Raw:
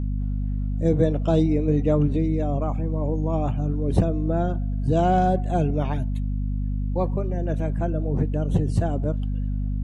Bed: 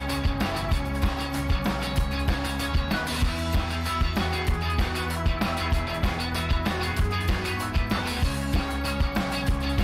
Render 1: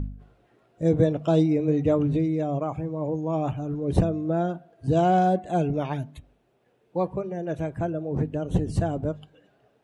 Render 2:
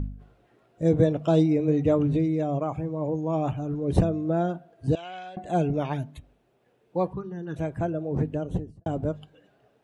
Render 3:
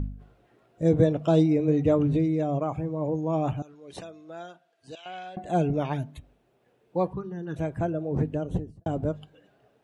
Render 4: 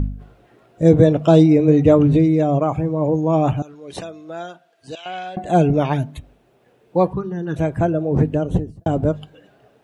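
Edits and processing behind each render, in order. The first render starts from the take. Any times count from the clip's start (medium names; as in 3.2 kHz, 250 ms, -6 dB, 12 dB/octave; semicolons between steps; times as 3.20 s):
de-hum 50 Hz, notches 5
4.95–5.37 s: band-pass filter 2.6 kHz, Q 2.4; 7.13–7.56 s: static phaser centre 2.3 kHz, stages 6; 8.30–8.86 s: studio fade out
3.62–5.06 s: band-pass filter 4.6 kHz, Q 0.63
trim +9.5 dB; peak limiter -2 dBFS, peak gain reduction 2 dB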